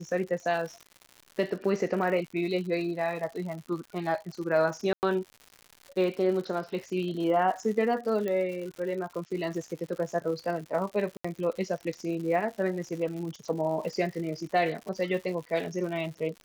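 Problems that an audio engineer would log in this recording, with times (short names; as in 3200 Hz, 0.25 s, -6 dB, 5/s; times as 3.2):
crackle 140/s -37 dBFS
4.93–5.03 gap 99 ms
8.28 pop -20 dBFS
11.17–11.24 gap 75 ms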